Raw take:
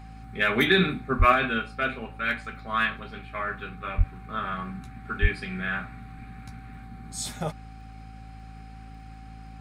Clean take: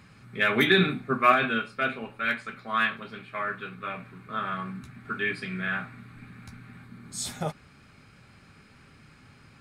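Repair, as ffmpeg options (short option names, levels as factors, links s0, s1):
-filter_complex "[0:a]adeclick=t=4,bandreject=f=54.5:t=h:w=4,bandreject=f=109:t=h:w=4,bandreject=f=163.5:t=h:w=4,bandreject=f=218:t=h:w=4,bandreject=f=272.5:t=h:w=4,bandreject=f=770:w=30,asplit=3[s0][s1][s2];[s0]afade=t=out:st=1.18:d=0.02[s3];[s1]highpass=f=140:w=0.5412,highpass=f=140:w=1.3066,afade=t=in:st=1.18:d=0.02,afade=t=out:st=1.3:d=0.02[s4];[s2]afade=t=in:st=1.3:d=0.02[s5];[s3][s4][s5]amix=inputs=3:normalize=0,asplit=3[s6][s7][s8];[s6]afade=t=out:st=3.97:d=0.02[s9];[s7]highpass=f=140:w=0.5412,highpass=f=140:w=1.3066,afade=t=in:st=3.97:d=0.02,afade=t=out:st=4.09:d=0.02[s10];[s8]afade=t=in:st=4.09:d=0.02[s11];[s9][s10][s11]amix=inputs=3:normalize=0,asplit=3[s12][s13][s14];[s12]afade=t=out:st=5.21:d=0.02[s15];[s13]highpass=f=140:w=0.5412,highpass=f=140:w=1.3066,afade=t=in:st=5.21:d=0.02,afade=t=out:st=5.33:d=0.02[s16];[s14]afade=t=in:st=5.33:d=0.02[s17];[s15][s16][s17]amix=inputs=3:normalize=0"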